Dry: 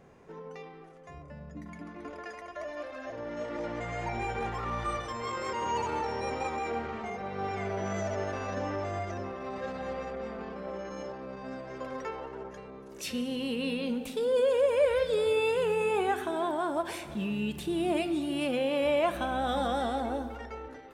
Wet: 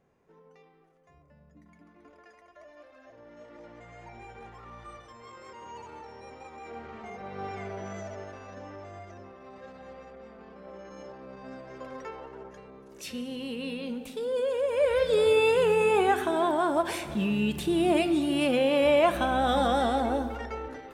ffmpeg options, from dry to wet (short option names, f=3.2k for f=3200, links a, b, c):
-af "volume=12.5dB,afade=t=in:st=6.5:d=0.88:silence=0.298538,afade=t=out:st=7.38:d=1.03:silence=0.421697,afade=t=in:st=10.37:d=1.09:silence=0.446684,afade=t=in:st=14.66:d=0.56:silence=0.398107"